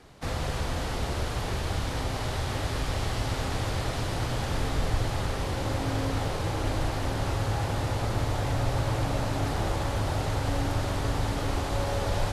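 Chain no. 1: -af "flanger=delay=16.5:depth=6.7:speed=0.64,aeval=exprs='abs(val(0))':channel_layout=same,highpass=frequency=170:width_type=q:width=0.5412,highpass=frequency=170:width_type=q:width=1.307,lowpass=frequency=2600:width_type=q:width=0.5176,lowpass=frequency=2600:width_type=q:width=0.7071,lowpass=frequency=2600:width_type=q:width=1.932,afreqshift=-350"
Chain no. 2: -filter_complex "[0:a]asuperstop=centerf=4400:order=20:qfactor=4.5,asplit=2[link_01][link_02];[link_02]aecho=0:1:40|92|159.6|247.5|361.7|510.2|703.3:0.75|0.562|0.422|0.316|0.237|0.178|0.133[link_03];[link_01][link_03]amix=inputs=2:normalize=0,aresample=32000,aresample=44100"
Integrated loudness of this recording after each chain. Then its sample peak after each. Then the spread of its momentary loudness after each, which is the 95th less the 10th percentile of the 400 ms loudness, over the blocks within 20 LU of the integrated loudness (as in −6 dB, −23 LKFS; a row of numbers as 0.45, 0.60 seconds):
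−39.0, −26.0 LKFS; −23.0, −11.0 dBFS; 3, 3 LU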